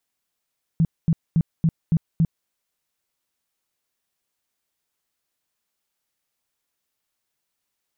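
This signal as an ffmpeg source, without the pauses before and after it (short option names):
-f lavfi -i "aevalsrc='0.2*sin(2*PI*163*mod(t,0.28))*lt(mod(t,0.28),8/163)':d=1.68:s=44100"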